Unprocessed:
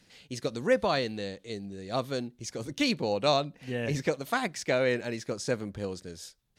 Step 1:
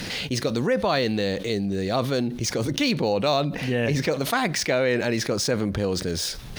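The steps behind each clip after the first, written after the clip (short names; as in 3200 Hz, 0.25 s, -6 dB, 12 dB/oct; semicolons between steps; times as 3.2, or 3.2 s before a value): median filter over 3 samples; bell 7500 Hz -6 dB 0.33 oct; fast leveller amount 70%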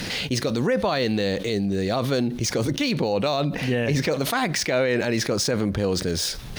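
limiter -15 dBFS, peak gain reduction 5 dB; gain +2 dB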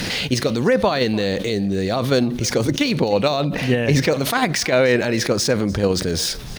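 in parallel at +1.5 dB: level quantiser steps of 11 dB; on the sum: echo 0.297 s -20.5 dB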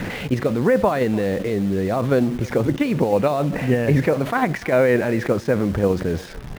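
EQ curve 940 Hz 0 dB, 2000 Hz -3 dB, 4800 Hz -21 dB; in parallel at -8 dB: bit-crush 5-bit; on the sum: gain -3 dB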